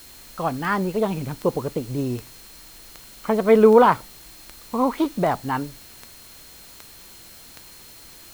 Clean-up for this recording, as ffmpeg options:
ffmpeg -i in.wav -af "adeclick=threshold=4,bandreject=frequency=4200:width=30,afwtdn=0.005" out.wav

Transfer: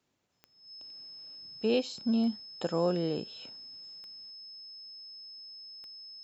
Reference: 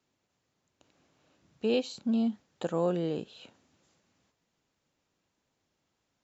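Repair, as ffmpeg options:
ffmpeg -i in.wav -af "adeclick=threshold=4,bandreject=frequency=5200:width=30" out.wav

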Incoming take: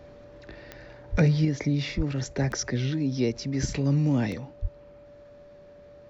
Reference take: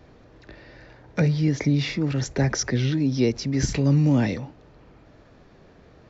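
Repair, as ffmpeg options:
ffmpeg -i in.wav -filter_complex "[0:a]adeclick=threshold=4,bandreject=frequency=580:width=30,asplit=3[link_01][link_02][link_03];[link_01]afade=type=out:start_time=1.11:duration=0.02[link_04];[link_02]highpass=frequency=140:width=0.5412,highpass=frequency=140:width=1.3066,afade=type=in:start_time=1.11:duration=0.02,afade=type=out:start_time=1.23:duration=0.02[link_05];[link_03]afade=type=in:start_time=1.23:duration=0.02[link_06];[link_04][link_05][link_06]amix=inputs=3:normalize=0,asplit=3[link_07][link_08][link_09];[link_07]afade=type=out:start_time=1.96:duration=0.02[link_10];[link_08]highpass=frequency=140:width=0.5412,highpass=frequency=140:width=1.3066,afade=type=in:start_time=1.96:duration=0.02,afade=type=out:start_time=2.08:duration=0.02[link_11];[link_09]afade=type=in:start_time=2.08:duration=0.02[link_12];[link_10][link_11][link_12]amix=inputs=3:normalize=0,asplit=3[link_13][link_14][link_15];[link_13]afade=type=out:start_time=4.61:duration=0.02[link_16];[link_14]highpass=frequency=140:width=0.5412,highpass=frequency=140:width=1.3066,afade=type=in:start_time=4.61:duration=0.02,afade=type=out:start_time=4.73:duration=0.02[link_17];[link_15]afade=type=in:start_time=4.73:duration=0.02[link_18];[link_16][link_17][link_18]amix=inputs=3:normalize=0,asetnsamples=nb_out_samples=441:pad=0,asendcmd='1.45 volume volume 4.5dB',volume=0dB" out.wav

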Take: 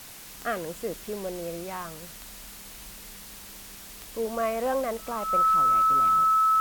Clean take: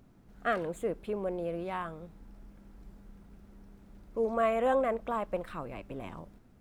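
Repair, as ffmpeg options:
ffmpeg -i in.wav -af "adeclick=threshold=4,bandreject=frequency=1300:width=30,afwtdn=0.0063" out.wav

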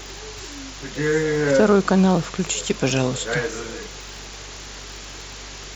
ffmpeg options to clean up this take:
ffmpeg -i in.wav -af "adeclick=threshold=4,bandreject=frequency=48.6:width_type=h:width=4,bandreject=frequency=97.2:width_type=h:width=4,bandreject=frequency=145.8:width_type=h:width=4,afftdn=noise_reduction=28:noise_floor=-37" out.wav

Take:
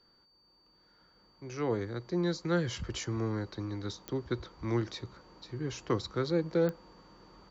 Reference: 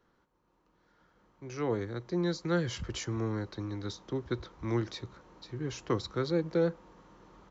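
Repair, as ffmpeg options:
ffmpeg -i in.wav -af "adeclick=threshold=4,bandreject=frequency=4600:width=30" out.wav

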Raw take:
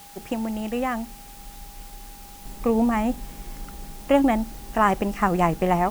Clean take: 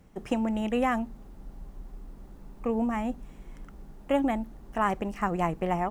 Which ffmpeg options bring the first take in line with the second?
ffmpeg -i in.wav -af "bandreject=frequency=810:width=30,afwtdn=0.0045,asetnsamples=nb_out_samples=441:pad=0,asendcmd='2.45 volume volume -7dB',volume=0dB" out.wav

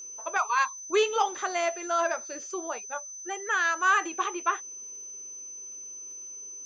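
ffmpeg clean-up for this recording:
ffmpeg -i in.wav -af "adeclick=threshold=4,bandreject=frequency=6100:width=30" out.wav

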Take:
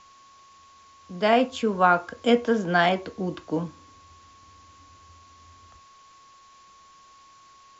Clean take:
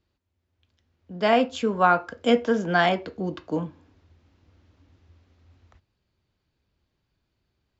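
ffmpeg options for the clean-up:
ffmpeg -i in.wav -af "bandreject=frequency=1100:width=30,agate=range=-21dB:threshold=-45dB" out.wav

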